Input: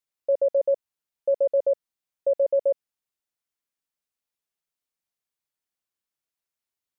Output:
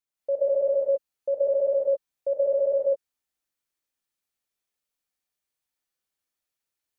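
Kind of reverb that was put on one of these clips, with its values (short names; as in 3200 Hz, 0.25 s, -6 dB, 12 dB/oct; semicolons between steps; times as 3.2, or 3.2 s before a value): non-linear reverb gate 0.24 s rising, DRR -6 dB; gain -4.5 dB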